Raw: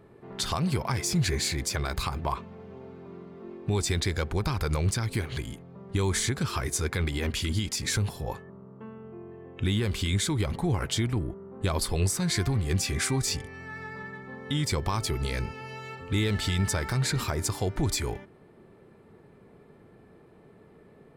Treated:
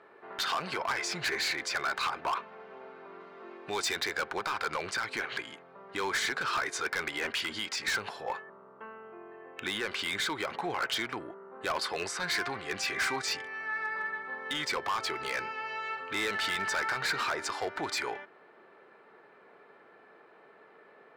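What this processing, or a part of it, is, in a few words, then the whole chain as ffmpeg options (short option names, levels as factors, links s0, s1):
megaphone: -filter_complex "[0:a]asettb=1/sr,asplit=3[s0][s1][s2];[s0]atrim=end=3.204[s3];[s1]atrim=start=3.2:end=3.95,asetpts=PTS-STARTPTS,afade=t=in:d=0.004:c=qsin,afade=t=out:st=0.746:d=0.004:c=qsin,aemphasis=mode=production:type=cd[s4];[s2]atrim=start=3.946[s5];[s3][s4]acrossfade=d=0.004:c1=hsin:c2=qsin[s6];[s6][s5]acrossfade=d=0.004:c1=qsin:c2=hsin,highpass=660,lowpass=3600,equalizer=f=1500:t=o:w=0.44:g=5.5,asoftclip=type=hard:threshold=0.0282,bandreject=f=3400:w=24,volume=1.78"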